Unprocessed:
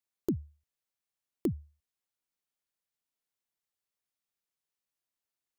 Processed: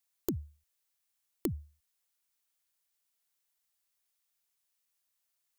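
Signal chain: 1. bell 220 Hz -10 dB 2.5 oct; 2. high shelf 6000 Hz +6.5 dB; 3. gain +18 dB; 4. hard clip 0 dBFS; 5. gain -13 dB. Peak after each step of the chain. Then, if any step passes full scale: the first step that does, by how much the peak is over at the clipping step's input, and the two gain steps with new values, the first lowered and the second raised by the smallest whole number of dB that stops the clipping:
-23.0, -20.5, -2.5, -2.5, -15.5 dBFS; no overload

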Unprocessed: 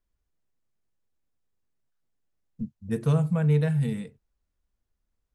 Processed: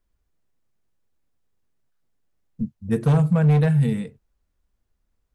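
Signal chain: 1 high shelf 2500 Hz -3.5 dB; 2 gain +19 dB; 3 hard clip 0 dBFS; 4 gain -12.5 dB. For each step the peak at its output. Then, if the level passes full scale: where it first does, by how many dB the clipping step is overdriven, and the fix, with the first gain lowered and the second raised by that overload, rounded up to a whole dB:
-13.0, +6.0, 0.0, -12.5 dBFS; step 2, 6.0 dB; step 2 +13 dB, step 4 -6.5 dB

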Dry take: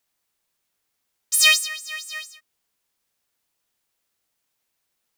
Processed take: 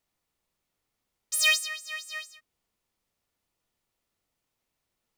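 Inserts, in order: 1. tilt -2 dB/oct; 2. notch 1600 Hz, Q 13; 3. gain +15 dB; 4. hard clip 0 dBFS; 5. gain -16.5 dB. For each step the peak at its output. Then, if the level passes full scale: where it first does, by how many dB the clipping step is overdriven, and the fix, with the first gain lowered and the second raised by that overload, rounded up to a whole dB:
-6.5, -6.5, +8.5, 0.0, -16.5 dBFS; step 3, 8.5 dB; step 3 +6 dB, step 5 -7.5 dB

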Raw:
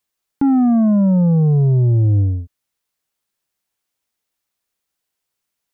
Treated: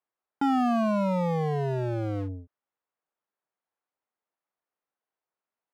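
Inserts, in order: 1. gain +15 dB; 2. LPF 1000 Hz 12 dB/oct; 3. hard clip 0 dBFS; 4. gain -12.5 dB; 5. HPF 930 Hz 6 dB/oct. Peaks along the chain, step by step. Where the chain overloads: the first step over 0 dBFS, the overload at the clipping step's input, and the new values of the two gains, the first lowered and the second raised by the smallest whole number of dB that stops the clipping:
+4.0, +4.0, 0.0, -12.5, -16.0 dBFS; step 1, 4.0 dB; step 1 +11 dB, step 4 -8.5 dB

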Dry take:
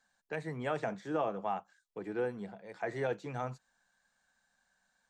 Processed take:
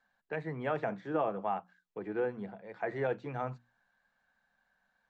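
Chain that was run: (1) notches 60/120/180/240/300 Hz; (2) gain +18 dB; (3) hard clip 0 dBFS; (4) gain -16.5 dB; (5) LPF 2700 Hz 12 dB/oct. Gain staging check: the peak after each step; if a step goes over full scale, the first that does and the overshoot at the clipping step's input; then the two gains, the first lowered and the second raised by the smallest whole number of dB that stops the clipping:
-21.5, -3.5, -3.5, -20.0, -20.0 dBFS; no overload

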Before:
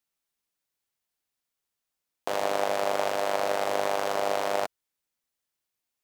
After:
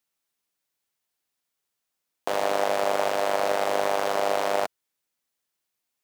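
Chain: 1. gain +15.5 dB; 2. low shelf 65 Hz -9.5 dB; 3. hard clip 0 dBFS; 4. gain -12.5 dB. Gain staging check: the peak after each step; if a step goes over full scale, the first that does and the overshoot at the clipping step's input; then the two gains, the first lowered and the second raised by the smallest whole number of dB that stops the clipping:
+4.0, +4.0, 0.0, -12.5 dBFS; step 1, 4.0 dB; step 1 +11.5 dB, step 4 -8.5 dB

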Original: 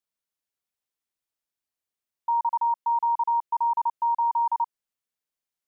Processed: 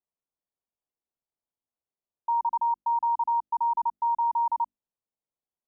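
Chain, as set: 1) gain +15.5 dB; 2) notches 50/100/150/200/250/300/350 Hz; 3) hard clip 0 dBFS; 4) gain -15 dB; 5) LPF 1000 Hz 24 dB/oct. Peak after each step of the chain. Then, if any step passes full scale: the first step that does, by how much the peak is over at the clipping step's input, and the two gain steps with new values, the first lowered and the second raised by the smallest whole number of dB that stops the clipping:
-4.0, -4.0, -4.0, -19.0, -21.0 dBFS; no overload

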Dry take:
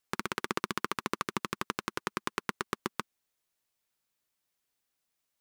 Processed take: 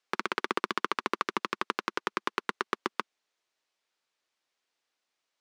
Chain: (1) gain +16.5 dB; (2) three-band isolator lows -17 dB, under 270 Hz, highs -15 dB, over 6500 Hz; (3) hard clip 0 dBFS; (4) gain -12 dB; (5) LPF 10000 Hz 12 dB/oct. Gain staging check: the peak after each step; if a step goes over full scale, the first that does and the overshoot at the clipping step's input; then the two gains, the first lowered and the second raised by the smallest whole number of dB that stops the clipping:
+7.5, +5.0, 0.0, -12.0, -11.5 dBFS; step 1, 5.0 dB; step 1 +11.5 dB, step 4 -7 dB

